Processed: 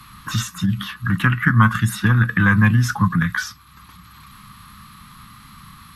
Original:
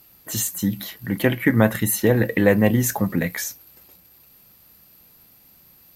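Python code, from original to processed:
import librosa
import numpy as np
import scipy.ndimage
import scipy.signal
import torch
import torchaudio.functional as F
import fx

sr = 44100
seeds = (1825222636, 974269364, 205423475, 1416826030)

y = fx.curve_eq(x, sr, hz=(210.0, 410.0, 640.0, 1200.0, 2300.0, 3900.0, 13000.0), db=(0, -22, -27, 9, -4, -2, -18))
y = fx.formant_shift(y, sr, semitones=-2)
y = fx.band_squash(y, sr, depth_pct=40)
y = y * 10.0 ** (6.5 / 20.0)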